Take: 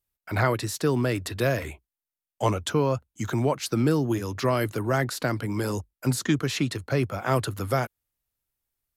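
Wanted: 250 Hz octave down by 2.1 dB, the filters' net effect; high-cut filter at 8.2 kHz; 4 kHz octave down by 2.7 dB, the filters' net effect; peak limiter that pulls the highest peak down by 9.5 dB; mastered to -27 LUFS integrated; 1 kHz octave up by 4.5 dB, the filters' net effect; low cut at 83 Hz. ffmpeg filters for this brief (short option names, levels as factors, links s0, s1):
-af "highpass=83,lowpass=8200,equalizer=f=250:t=o:g=-3,equalizer=f=1000:t=o:g=6,equalizer=f=4000:t=o:g=-3.5,volume=1.19,alimiter=limit=0.188:level=0:latency=1"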